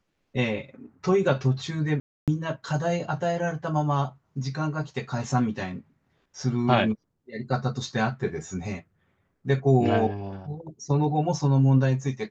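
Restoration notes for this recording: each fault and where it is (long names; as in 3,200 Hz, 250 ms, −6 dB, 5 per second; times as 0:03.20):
0:02.00–0:02.28: drop-out 277 ms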